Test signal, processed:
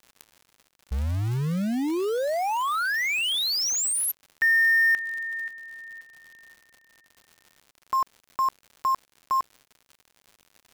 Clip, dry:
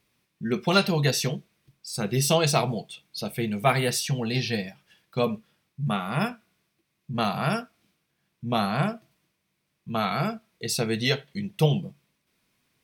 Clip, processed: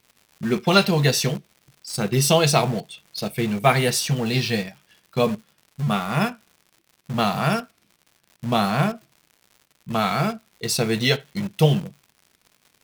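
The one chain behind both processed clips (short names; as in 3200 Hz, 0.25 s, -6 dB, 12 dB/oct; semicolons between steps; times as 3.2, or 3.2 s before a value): crackle 140/s -42 dBFS; in parallel at -10 dB: bit-crush 5-bit; on the sum: gain +2 dB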